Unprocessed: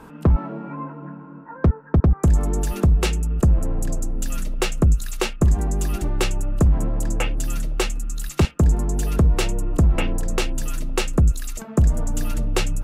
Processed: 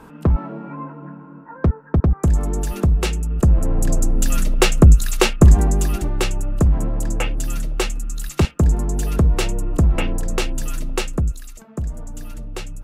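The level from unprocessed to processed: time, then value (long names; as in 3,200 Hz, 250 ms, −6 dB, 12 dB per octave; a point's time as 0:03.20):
0:03.26 0 dB
0:04.03 +7.5 dB
0:05.53 +7.5 dB
0:06.10 +1 dB
0:10.91 +1 dB
0:11.57 −9 dB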